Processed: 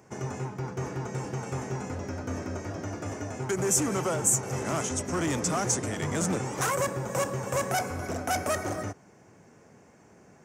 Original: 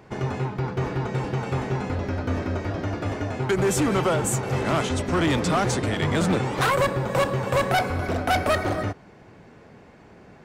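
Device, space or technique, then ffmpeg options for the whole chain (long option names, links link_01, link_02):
budget condenser microphone: -af "highpass=84,highshelf=frequency=5000:width_type=q:width=3:gain=7.5,volume=-6.5dB"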